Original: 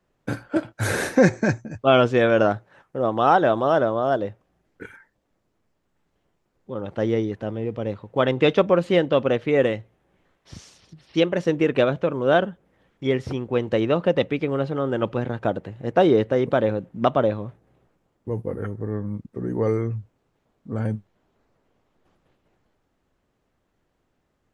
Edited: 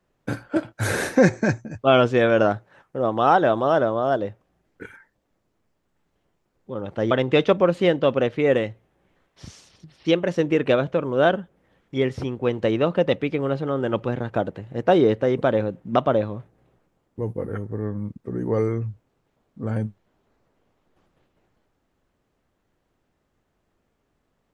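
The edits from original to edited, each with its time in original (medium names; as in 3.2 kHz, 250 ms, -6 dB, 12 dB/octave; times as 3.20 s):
7.11–8.20 s: delete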